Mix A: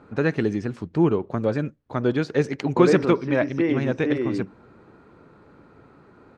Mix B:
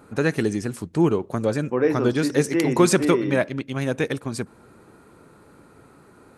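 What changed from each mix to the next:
second voice: entry −1.05 s
master: remove high-frequency loss of the air 180 metres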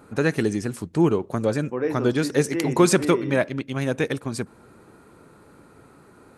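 second voice −5.0 dB

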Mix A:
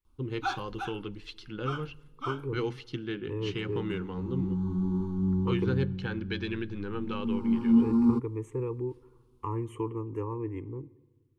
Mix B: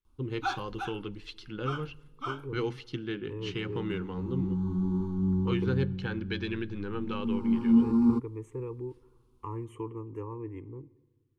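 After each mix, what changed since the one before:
second voice −4.5 dB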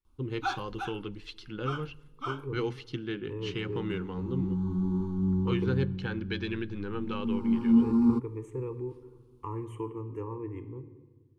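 second voice: send +11.5 dB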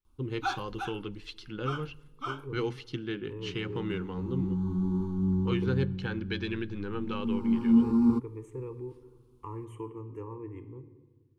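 second voice −3.5 dB
master: add high-shelf EQ 7,600 Hz +4 dB

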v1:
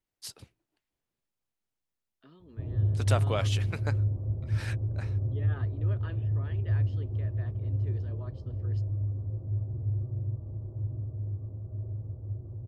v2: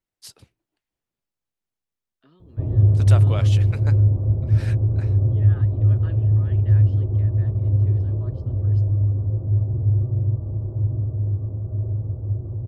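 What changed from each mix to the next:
background +11.5 dB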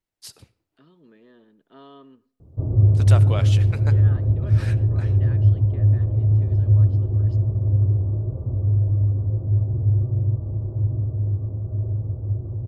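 second voice: entry −1.45 s
reverb: on, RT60 0.55 s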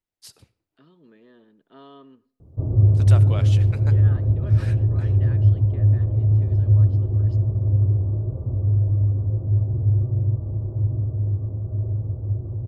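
first voice −4.0 dB

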